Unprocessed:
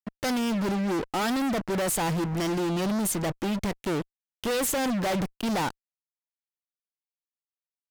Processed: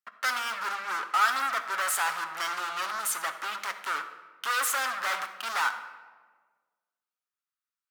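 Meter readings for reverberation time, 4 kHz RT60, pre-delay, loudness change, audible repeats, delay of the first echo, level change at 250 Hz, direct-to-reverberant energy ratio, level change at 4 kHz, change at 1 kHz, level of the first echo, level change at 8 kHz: 1.5 s, 0.85 s, 7 ms, -1.5 dB, none, none, -29.0 dB, 6.0 dB, +0.5 dB, +3.5 dB, none, -0.5 dB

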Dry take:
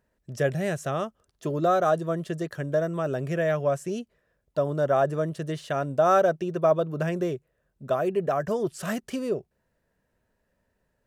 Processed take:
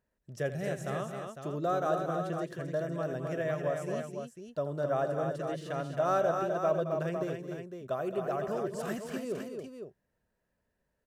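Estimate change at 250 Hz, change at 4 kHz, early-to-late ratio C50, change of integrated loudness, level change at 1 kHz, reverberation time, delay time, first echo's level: -6.5 dB, -6.5 dB, none, -7.0 dB, -6.5 dB, none, 83 ms, -13.5 dB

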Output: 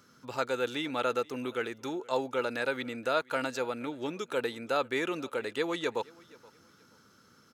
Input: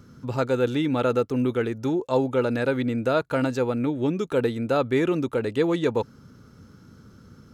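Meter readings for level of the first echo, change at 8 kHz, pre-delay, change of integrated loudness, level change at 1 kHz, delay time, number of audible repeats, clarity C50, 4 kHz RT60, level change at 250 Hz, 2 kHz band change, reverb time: -24.0 dB, n/a, none, -8.5 dB, -3.5 dB, 0.476 s, 1, none, none, -13.0 dB, -1.5 dB, none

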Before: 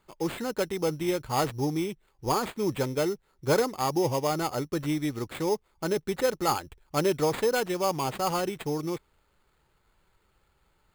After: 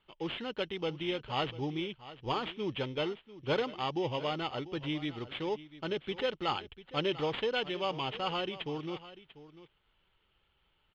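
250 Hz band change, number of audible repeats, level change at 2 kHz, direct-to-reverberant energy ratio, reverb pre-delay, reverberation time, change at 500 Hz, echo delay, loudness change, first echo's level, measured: -7.5 dB, 1, -3.0 dB, none, none, none, -7.0 dB, 0.694 s, -6.5 dB, -16.0 dB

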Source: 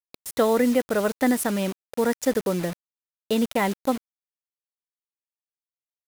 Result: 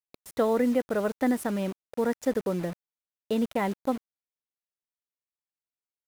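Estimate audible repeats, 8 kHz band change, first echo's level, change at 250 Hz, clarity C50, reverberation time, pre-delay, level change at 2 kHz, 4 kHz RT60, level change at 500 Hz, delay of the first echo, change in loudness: none, -11.5 dB, none, -3.5 dB, none, none, none, -7.0 dB, none, -4.0 dB, none, -4.0 dB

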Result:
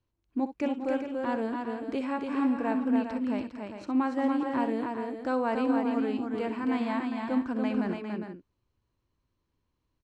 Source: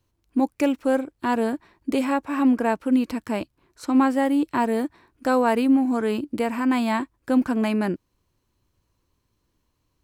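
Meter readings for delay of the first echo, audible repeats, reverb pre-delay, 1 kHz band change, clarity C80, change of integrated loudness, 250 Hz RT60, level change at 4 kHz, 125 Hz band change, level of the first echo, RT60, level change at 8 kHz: 62 ms, 5, none, -7.0 dB, none, -7.0 dB, none, -9.0 dB, n/a, -12.5 dB, none, under -15 dB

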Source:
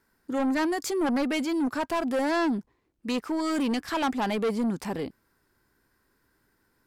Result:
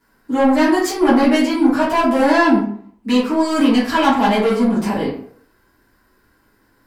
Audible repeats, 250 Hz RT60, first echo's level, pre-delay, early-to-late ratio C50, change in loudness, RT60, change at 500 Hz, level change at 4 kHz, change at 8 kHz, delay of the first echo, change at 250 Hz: none, 0.55 s, none, 5 ms, 4.0 dB, +12.0 dB, 0.55 s, +12.0 dB, +11.0 dB, +8.0 dB, none, +12.0 dB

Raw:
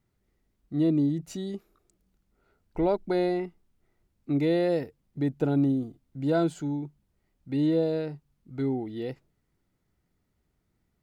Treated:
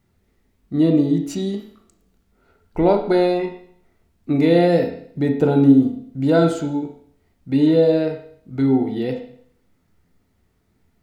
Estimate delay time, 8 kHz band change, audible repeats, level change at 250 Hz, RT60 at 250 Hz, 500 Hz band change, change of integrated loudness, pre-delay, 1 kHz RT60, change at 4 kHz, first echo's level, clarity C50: none, n/a, none, +10.0 dB, 0.60 s, +10.0 dB, +9.5 dB, 10 ms, 0.60 s, +10.0 dB, none, 7.0 dB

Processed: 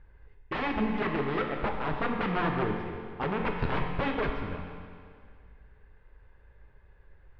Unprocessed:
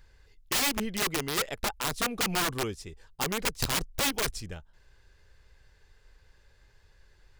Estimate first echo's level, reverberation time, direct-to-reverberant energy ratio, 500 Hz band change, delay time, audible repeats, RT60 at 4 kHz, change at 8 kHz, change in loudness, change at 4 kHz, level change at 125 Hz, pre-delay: none, 2.1 s, 1.5 dB, +3.5 dB, none, none, 2.0 s, under -40 dB, -2.0 dB, -13.0 dB, +4.0 dB, 7 ms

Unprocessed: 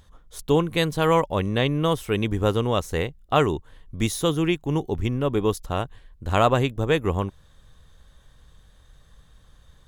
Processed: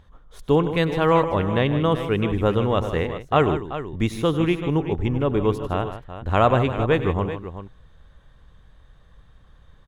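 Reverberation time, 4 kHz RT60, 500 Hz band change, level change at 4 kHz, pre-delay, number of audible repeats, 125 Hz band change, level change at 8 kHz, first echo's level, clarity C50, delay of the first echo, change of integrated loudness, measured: none, none, +2.0 dB, -3.0 dB, none, 3, +2.0 dB, under -10 dB, -15.5 dB, none, 97 ms, +1.5 dB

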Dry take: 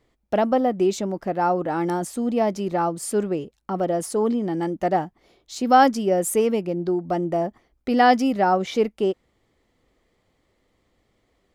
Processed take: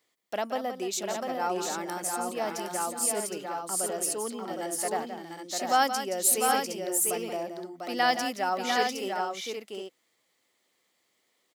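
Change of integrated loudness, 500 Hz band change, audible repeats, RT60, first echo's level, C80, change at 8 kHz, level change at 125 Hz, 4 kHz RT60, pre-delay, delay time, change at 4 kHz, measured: -6.5 dB, -10.0 dB, 3, none, -9.5 dB, none, +6.5 dB, -17.0 dB, none, none, 0.173 s, +2.0 dB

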